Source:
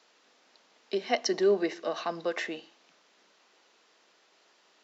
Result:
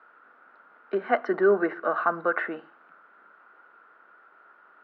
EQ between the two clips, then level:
low-pass with resonance 1,400 Hz, resonance Q 10
high-frequency loss of the air 190 metres
mains-hum notches 50/100/150 Hz
+3.0 dB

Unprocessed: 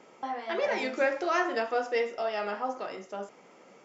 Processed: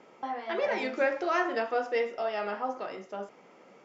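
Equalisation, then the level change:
high-frequency loss of the air 88 metres
0.0 dB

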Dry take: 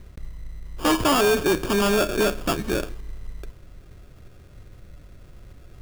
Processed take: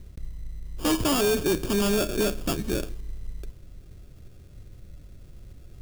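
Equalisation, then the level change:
parametric band 1,200 Hz −9 dB 2.6 octaves
0.0 dB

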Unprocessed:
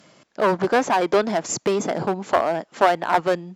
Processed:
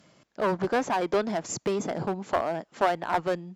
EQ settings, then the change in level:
low-shelf EQ 120 Hz +11 dB
−7.5 dB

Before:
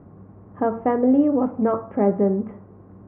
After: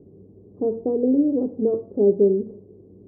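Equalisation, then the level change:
transistor ladder low-pass 460 Hz, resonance 65%
+5.0 dB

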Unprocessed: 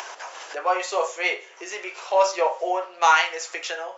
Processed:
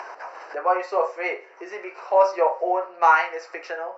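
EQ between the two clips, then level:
moving average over 13 samples
+2.5 dB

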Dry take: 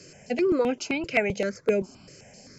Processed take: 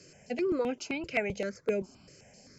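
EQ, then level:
parametric band 68 Hz +5 dB 0.22 octaves
−6.5 dB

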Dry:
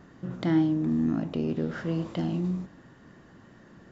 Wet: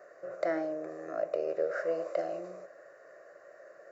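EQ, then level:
high-pass with resonance 590 Hz, resonance Q 5.6
phaser with its sweep stopped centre 890 Hz, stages 6
0.0 dB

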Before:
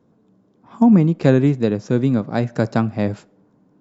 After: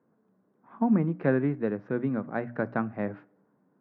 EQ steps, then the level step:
high-pass filter 150 Hz 12 dB per octave
transistor ladder low-pass 2,100 Hz, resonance 40%
mains-hum notches 60/120/180/240/300 Hz
−1.5 dB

